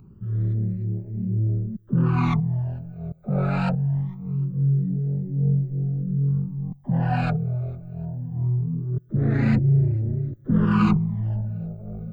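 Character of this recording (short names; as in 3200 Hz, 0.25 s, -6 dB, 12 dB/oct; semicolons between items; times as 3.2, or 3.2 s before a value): phasing stages 12, 0.23 Hz, lowest notch 310–1100 Hz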